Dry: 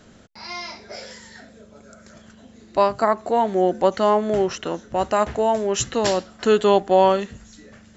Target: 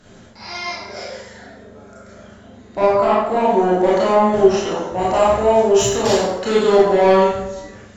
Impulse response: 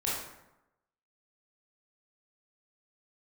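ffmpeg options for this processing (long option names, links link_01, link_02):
-filter_complex "[0:a]asettb=1/sr,asplit=3[link_01][link_02][link_03];[link_01]atrim=end=1.024[link_04];[link_02]atrim=start=1.02:end=3.3,asetpts=PTS-STARTPTS,afade=type=in:duration=0.004:curve=qsin,afade=type=out:start_time=2.276:duration=0.004:curve=qsin,highshelf=frequency=3600:gain=-8[link_05];[link_03]atrim=start=3.296[link_06];[link_04][link_05]acrossfade=duration=0.004:curve1=hsin:curve2=qsin[link_07];[link_07][link_06]acrossfade=duration=0.004:curve1=qsin:curve2=hsin,asoftclip=type=tanh:threshold=-13.5dB[link_08];[1:a]atrim=start_sample=2205,asetrate=38808,aresample=44100[link_09];[link_08][link_09]afir=irnorm=-1:irlink=0,volume=-1dB"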